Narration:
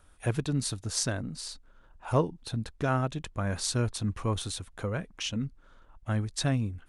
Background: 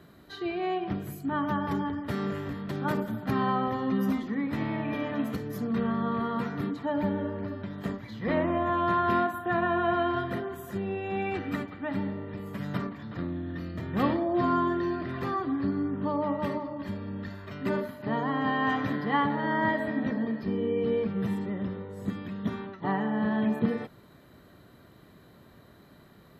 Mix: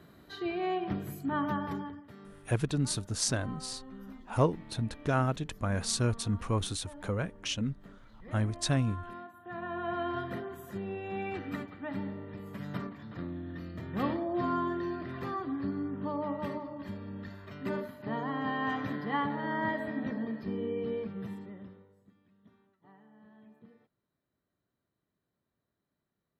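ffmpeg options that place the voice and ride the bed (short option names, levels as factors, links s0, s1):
-filter_complex "[0:a]adelay=2250,volume=0.944[s0];[1:a]volume=4.22,afade=t=out:st=1.42:d=0.67:silence=0.125893,afade=t=in:st=9.35:d=0.84:silence=0.188365,afade=t=out:st=20.62:d=1.43:silence=0.0562341[s1];[s0][s1]amix=inputs=2:normalize=0"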